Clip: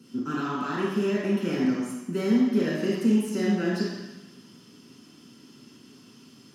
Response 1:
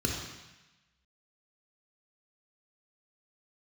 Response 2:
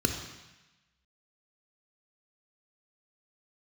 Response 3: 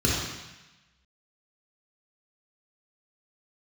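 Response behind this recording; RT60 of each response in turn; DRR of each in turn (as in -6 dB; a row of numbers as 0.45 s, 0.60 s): 3; 1.0 s, 1.0 s, 1.0 s; -0.5 dB, 4.0 dB, -5.0 dB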